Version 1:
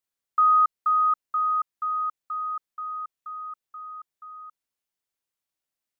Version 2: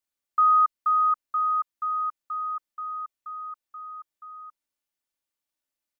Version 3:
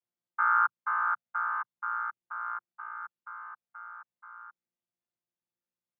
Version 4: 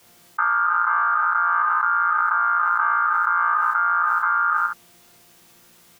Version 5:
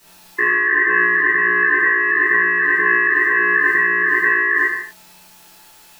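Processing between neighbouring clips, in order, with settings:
comb 3.4 ms, depth 43%; trim -1.5 dB
vocoder on a held chord bare fifth, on A#2; trim -5.5 dB
on a send: reverse bouncing-ball echo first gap 30 ms, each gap 1.2×, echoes 5; on the sum: level flattener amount 100%
split-band scrambler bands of 500 Hz; gated-style reverb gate 210 ms falling, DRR -6 dB

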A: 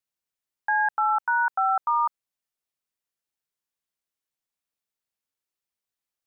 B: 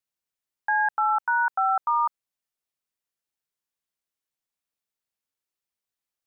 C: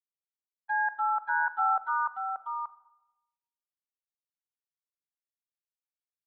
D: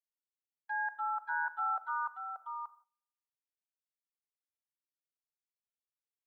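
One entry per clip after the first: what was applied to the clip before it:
no audible change
gate -24 dBFS, range -33 dB; delay 582 ms -5 dB; simulated room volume 410 m³, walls mixed, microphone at 0.31 m; trim -6 dB
gate -54 dBFS, range -19 dB; tone controls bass -13 dB, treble +11 dB; band-stop 790 Hz, Q 12; trim -6.5 dB

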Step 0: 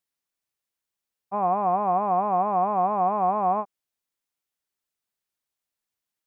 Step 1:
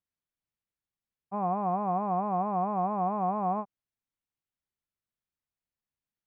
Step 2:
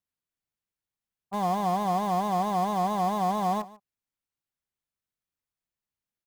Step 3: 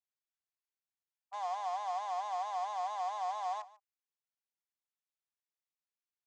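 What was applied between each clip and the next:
tone controls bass +11 dB, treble -10 dB; trim -7 dB
in parallel at -10 dB: bit crusher 5-bit; on the sum: delay 147 ms -20 dB
elliptic band-pass 730–7000 Hz, stop band 50 dB; trim -8 dB

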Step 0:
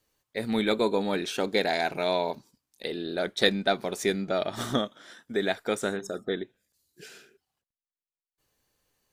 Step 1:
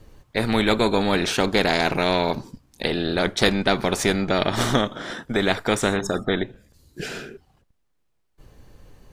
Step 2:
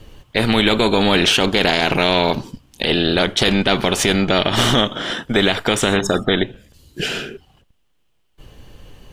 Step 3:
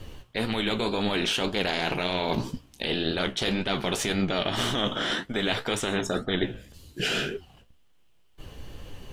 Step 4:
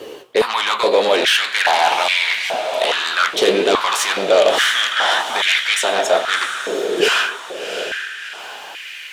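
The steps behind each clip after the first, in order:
tilt EQ -3.5 dB/octave; spectrum-flattening compressor 2:1; trim +4 dB
peaking EQ 3 kHz +11 dB 0.4 oct; loudness maximiser +9 dB; trim -2.5 dB
reverse; compression 6:1, threshold -24 dBFS, peak gain reduction 13 dB; reverse; flange 1.9 Hz, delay 9.4 ms, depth 9.6 ms, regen +52%; trim +4 dB
sine folder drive 8 dB, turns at -11.5 dBFS; echo that smears into a reverb 692 ms, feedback 49%, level -8 dB; step-sequenced high-pass 2.4 Hz 420–2100 Hz; trim -1 dB

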